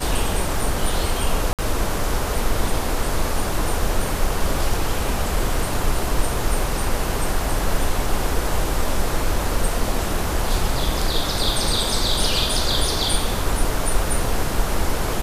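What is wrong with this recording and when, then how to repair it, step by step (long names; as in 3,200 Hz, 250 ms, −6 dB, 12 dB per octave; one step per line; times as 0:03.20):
0:01.53–0:01.59: drop-out 57 ms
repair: repair the gap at 0:01.53, 57 ms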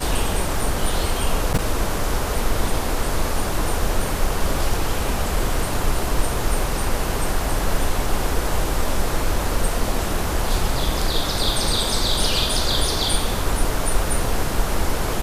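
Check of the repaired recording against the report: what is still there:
none of them is left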